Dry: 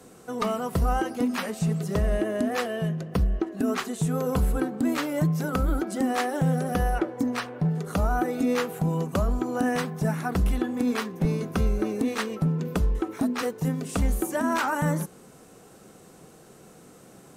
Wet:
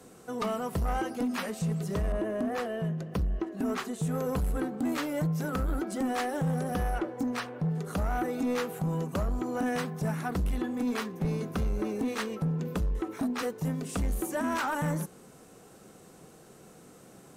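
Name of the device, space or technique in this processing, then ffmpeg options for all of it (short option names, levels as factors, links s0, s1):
saturation between pre-emphasis and de-emphasis: -filter_complex "[0:a]highshelf=f=9400:g=8,asoftclip=type=tanh:threshold=0.0891,highshelf=f=9400:g=-8,asettb=1/sr,asplit=3[s0][s1][s2];[s0]atrim=end=2.124[s3];[s1]atrim=start=2.12:end=4.02,asetpts=PTS-STARTPTS,afade=t=in:d=0.004:c=qsin,afade=t=out:st=1.896:d=0.004:c=qsin,adynamicequalizer=threshold=0.00631:dfrequency=1900:dqfactor=0.7:tfrequency=1900:tqfactor=0.7:attack=5:release=100:ratio=0.375:range=3:mode=cutabove:tftype=highshelf[s4];[s2]atrim=start=4.016[s5];[s3][s4]acrossfade=d=0.004:c1=hsin:c2=qsin[s6];[s6][s5]acrossfade=d=0.004:c1=qsin:c2=hsin,volume=0.75"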